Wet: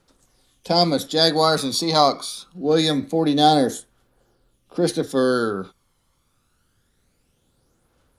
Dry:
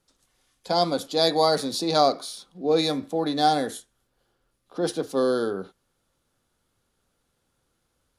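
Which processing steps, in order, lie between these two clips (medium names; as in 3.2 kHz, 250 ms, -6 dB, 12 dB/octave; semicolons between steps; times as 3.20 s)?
phaser 0.25 Hz, delay 1 ms, feedback 50%; trim +4.5 dB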